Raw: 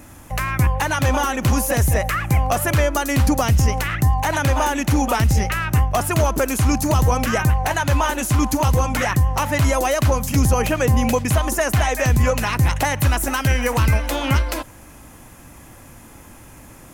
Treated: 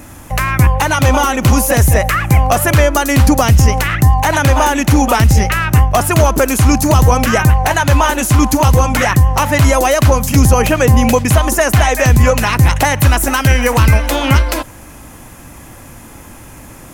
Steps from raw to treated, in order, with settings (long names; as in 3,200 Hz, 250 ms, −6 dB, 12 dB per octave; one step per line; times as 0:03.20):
0:00.78–0:01.68: notch filter 1,700 Hz, Q 12
level +7.5 dB